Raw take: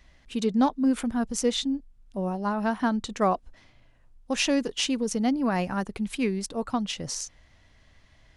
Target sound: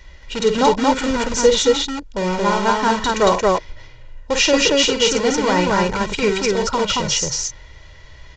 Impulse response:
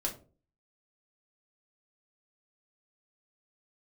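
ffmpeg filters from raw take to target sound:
-filter_complex "[0:a]bandreject=f=50:t=h:w=6,bandreject=f=100:t=h:w=6,bandreject=f=150:t=h:w=6,asplit=2[a][b];[b]aeval=exprs='(mod(22.4*val(0)+1,2)-1)/22.4':c=same,volume=-7dB[c];[a][c]amix=inputs=2:normalize=0,aresample=16000,aresample=44100,aecho=1:1:2.1:0.68,aecho=1:1:49.56|227.4:0.447|0.891,volume=7.5dB"

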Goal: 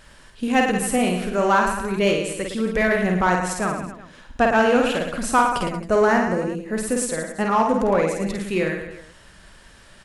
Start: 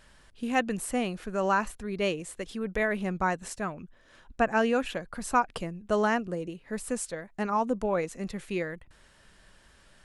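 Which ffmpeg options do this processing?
-filter_complex "[0:a]aecho=1:1:50|110|182|268.4|372.1:0.631|0.398|0.251|0.158|0.1,asplit=2[a][b];[b]asoftclip=type=hard:threshold=-24dB,volume=-3.5dB[c];[a][c]amix=inputs=2:normalize=0,asettb=1/sr,asplit=3[d][e][f];[d]atrim=end=5.734[g];[e]atrim=start=5.73:end=6.75,asetpts=PTS-STARTPTS,afade=t=in:d=0.004:c=qsin,afade=t=out:st=1.016:d=0.004:c=qsin,equalizer=f=3.2k:t=o:w=0.46:g=-9[h];[f]atrim=start=6.746[i];[g][h]acrossfade=d=0.004:c1=hsin:c2=qsin[j];[j][i]acrossfade=d=0.004:c1=qsin:c2=hsin,volume=3.5dB"

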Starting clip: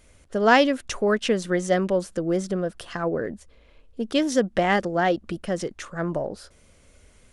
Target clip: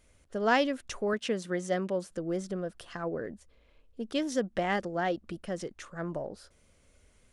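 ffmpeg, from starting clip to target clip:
-filter_complex "[0:a]asettb=1/sr,asplit=3[a][b][c];[a]atrim=end=1.134[d];[b]atrim=start=1.13:end=2.11,asetpts=PTS-STARTPTS,afade=t=in:d=0.004:c=qsin,afade=t=out:st=0.976:d=0.004:c=qsin,highpass=82[e];[c]atrim=start=2.106[f];[d][e]acrossfade=d=0.004:c1=hsin:c2=qsin[g];[g][f]acrossfade=d=0.004:c1=qsin:c2=hsin,volume=-8.5dB"

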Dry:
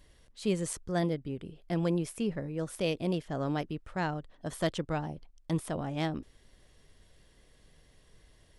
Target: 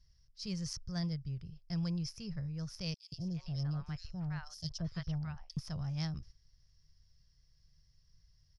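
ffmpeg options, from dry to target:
-filter_complex "[0:a]agate=range=-8dB:threshold=-49dB:ratio=16:detection=peak,firequalizer=gain_entry='entry(140,0);entry(260,-25);entry(1200,-14);entry(3600,-14);entry(5200,9);entry(7700,-21)':delay=0.05:min_phase=1,asettb=1/sr,asplit=3[a][b][c];[a]atrim=end=2.944[d];[b]atrim=start=2.94:end=5.57,asetpts=PTS-STARTPTS,afade=t=in:d=0.004:c=qsin,afade=t=out:st=2.626:d=0.004:c=qsin,acrossover=split=730|3400[e][f][g];[e]adelay=180[h];[f]adelay=340[i];[h][i][g]amix=inputs=3:normalize=0,atrim=end_sample=115983[j];[c]atrim=start=5.566[k];[d][j]acrossfade=d=0.004:c1=hsin:c2=qsin[l];[l][k]acrossfade=d=0.004:c1=qsin:c2=hsin,volume=3dB"

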